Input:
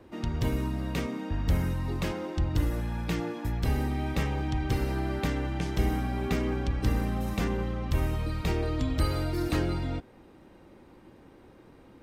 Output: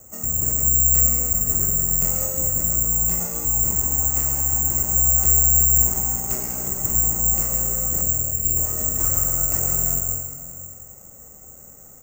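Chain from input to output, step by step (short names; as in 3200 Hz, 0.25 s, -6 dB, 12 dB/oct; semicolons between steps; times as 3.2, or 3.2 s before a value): LPF 1900 Hz 12 dB/oct; bell 68 Hz +3.5 dB 0.36 oct; comb 1.5 ms, depth 74%; in parallel at -5.5 dB: sine folder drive 10 dB, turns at -13.5 dBFS; 8.01–8.57 on the sum: Butterworth band-stop 1200 Hz, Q 0.67; on a send at -1.5 dB: reverb RT60 2.1 s, pre-delay 91 ms; on the sum: careless resampling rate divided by 6×, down filtered, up zero stuff; gain -13 dB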